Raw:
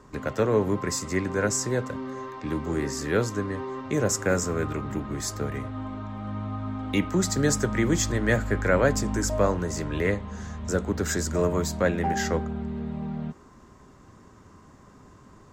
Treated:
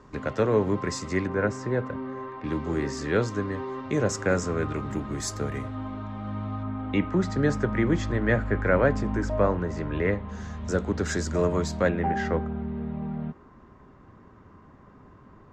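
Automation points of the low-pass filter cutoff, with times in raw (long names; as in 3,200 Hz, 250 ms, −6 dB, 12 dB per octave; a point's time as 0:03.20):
5,200 Hz
from 0:01.27 2,300 Hz
from 0:02.44 5,100 Hz
from 0:04.76 10,000 Hz
from 0:05.75 5,100 Hz
from 0:06.63 2,500 Hz
from 0:10.29 5,600 Hz
from 0:11.89 2,400 Hz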